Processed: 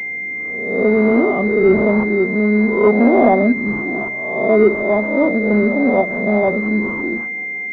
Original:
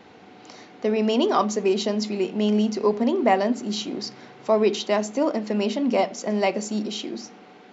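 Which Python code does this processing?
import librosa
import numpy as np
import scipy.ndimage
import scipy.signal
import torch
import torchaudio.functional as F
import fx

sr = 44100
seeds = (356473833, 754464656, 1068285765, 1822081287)

y = fx.spec_swells(x, sr, rise_s=0.89)
y = fx.rotary_switch(y, sr, hz=0.9, then_hz=5.5, switch_at_s=4.94)
y = fx.hpss(y, sr, part='harmonic', gain_db=6)
y = fx.pwm(y, sr, carrier_hz=2100.0)
y = y * librosa.db_to_amplitude(3.0)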